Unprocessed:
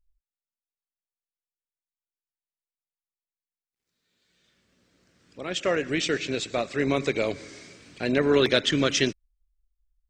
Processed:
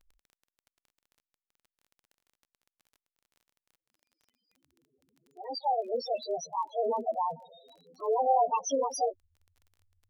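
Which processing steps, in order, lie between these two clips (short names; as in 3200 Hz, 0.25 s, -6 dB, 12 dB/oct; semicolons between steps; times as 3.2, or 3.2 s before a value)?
gliding pitch shift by +12 st starting unshifted; loudest bins only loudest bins 4; crackle 21/s -48 dBFS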